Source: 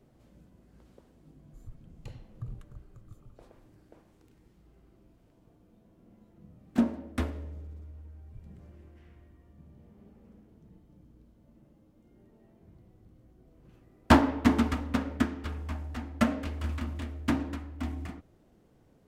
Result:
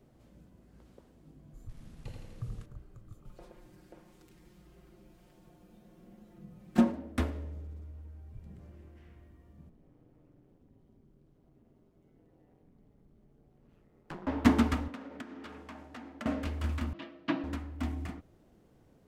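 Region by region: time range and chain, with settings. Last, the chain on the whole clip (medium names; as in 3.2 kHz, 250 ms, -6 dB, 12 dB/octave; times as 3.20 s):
1.69–2.66 s: one-bit delta coder 64 kbps, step -58 dBFS + feedback delay 83 ms, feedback 59%, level -6 dB
3.25–6.92 s: comb 5.6 ms, depth 88% + tape noise reduction on one side only encoder only
9.69–14.27 s: treble shelf 5.6 kHz -6 dB + compression 2:1, threshold -57 dBFS + ring modulator 85 Hz
14.88–16.26 s: high-pass 230 Hz + treble shelf 8.8 kHz -10.5 dB + compression 4:1, threshold -42 dBFS
16.93–17.44 s: cabinet simulation 300–4000 Hz, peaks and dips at 450 Hz -10 dB, 810 Hz -6 dB, 1.5 kHz -5 dB, 2.1 kHz -5 dB, 3.5 kHz -3 dB + comb 6.1 ms, depth 85%
whole clip: none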